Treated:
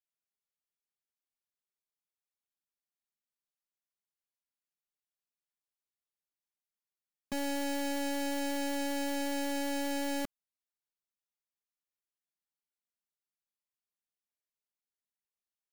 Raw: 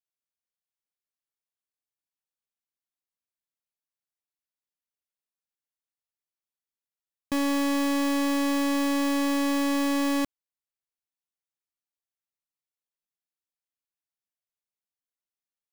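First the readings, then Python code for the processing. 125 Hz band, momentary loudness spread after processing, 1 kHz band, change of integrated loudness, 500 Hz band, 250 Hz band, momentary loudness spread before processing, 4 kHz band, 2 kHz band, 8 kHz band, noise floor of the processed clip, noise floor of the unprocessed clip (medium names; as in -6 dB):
no reading, 3 LU, -7.5 dB, -9.0 dB, -5.5 dB, -11.0 dB, 3 LU, -6.0 dB, -7.0 dB, -4.5 dB, under -85 dBFS, under -85 dBFS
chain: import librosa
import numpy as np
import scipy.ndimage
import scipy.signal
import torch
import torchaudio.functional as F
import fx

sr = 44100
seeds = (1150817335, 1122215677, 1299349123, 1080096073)

y = fx.vibrato(x, sr, rate_hz=5.3, depth_cents=5.7)
y = y + 0.98 * np.pad(y, (int(4.9 * sr / 1000.0), 0))[:len(y)]
y = y * 10.0 ** (-8.5 / 20.0)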